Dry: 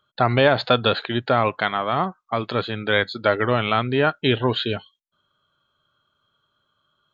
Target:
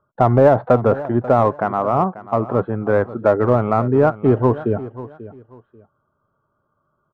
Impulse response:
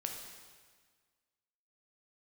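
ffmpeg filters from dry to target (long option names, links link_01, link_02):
-filter_complex "[0:a]lowpass=frequency=1100:width=0.5412,lowpass=frequency=1100:width=1.3066,asplit=2[link_01][link_02];[link_02]asoftclip=type=hard:threshold=-16.5dB,volume=-8dB[link_03];[link_01][link_03]amix=inputs=2:normalize=0,aecho=1:1:539|1078:0.158|0.0396,volume=3.5dB"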